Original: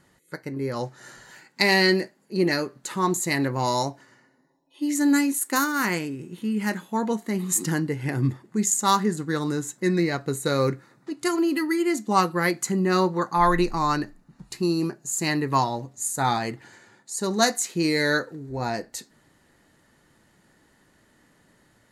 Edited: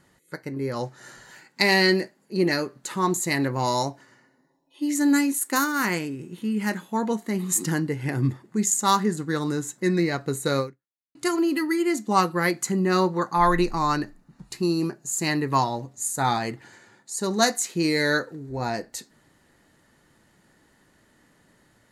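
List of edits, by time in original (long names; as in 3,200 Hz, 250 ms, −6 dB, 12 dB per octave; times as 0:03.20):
0:10.59–0:11.15: fade out exponential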